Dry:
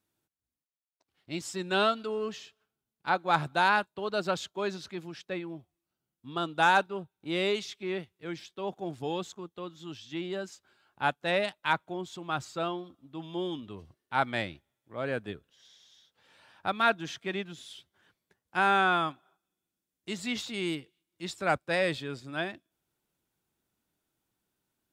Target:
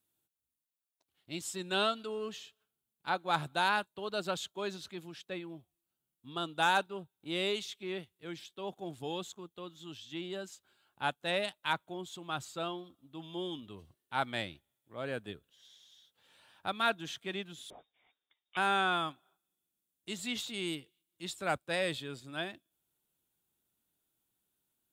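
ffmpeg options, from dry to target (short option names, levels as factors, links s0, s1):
-filter_complex "[0:a]aexciter=amount=2.2:drive=1.2:freq=2900,asettb=1/sr,asplit=3[s0][s1][s2];[s0]atrim=end=17.704[s3];[s1]atrim=start=17.7:end=18.57,asetpts=PTS-STARTPTS,afade=t=in:d=0.004:c=qsin,afade=t=out:st=0.866:d=0.004:c=qsin,lowpass=f=3200:t=q:w=0.5098,lowpass=f=3200:t=q:w=0.6013,lowpass=f=3200:t=q:w=0.9,lowpass=f=3200:t=q:w=2.563,afreqshift=-3800[s4];[s2]atrim=start=18.566[s5];[s3][s4]acrossfade=d=0.004:c1=hsin:c2=qsin[s6];[s6][s5]acrossfade=d=0.004:c1=qsin:c2=hsin,volume=0.531"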